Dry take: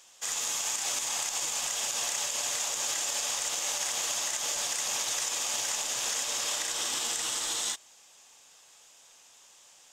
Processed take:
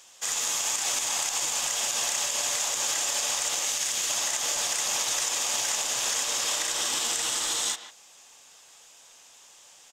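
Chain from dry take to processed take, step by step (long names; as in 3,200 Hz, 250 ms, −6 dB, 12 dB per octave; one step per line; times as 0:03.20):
0:03.65–0:04.10: parametric band 780 Hz −7.5 dB 1.6 octaves
far-end echo of a speakerphone 150 ms, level −10 dB
level +3.5 dB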